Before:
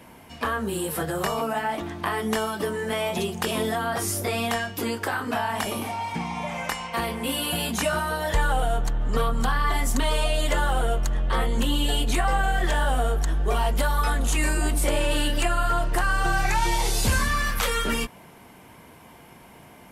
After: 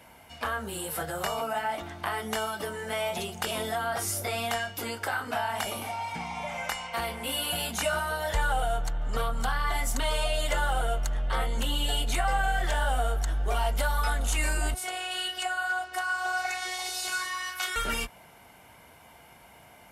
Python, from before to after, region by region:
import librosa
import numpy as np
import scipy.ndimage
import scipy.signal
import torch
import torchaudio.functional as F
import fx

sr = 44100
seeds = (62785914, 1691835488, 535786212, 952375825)

y = fx.chain(x, sr, fx.robotise(hz=366.0),
    fx.weighting(curve='A'), at=(14.74, 17.76))
y = scipy.signal.sosfilt(scipy.signal.butter(2, 41.0, 'highpass', fs=sr, output='sos'), y)
y = fx.peak_eq(y, sr, hz=180.0, db=-7.5, octaves=2.3)
y = y + 0.31 * np.pad(y, (int(1.4 * sr / 1000.0), 0))[:len(y)]
y = F.gain(torch.from_numpy(y), -3.0).numpy()